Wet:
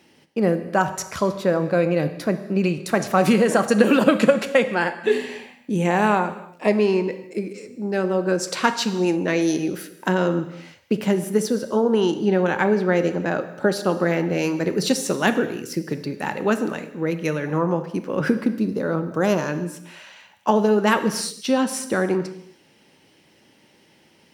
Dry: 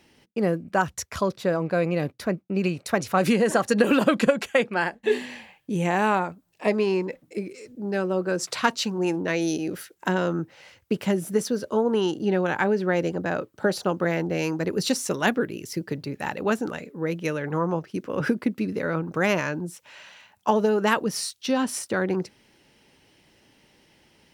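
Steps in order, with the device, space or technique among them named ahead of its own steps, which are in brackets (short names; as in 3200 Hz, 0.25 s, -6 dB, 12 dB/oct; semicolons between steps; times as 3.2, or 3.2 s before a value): 18.46–19.49 bell 2200 Hz -12 dB 0.66 oct; filter by subtraction (in parallel: LPF 220 Hz 12 dB/oct + phase invert); on the sum: non-linear reverb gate 0.35 s falling, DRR 9 dB; gain +2 dB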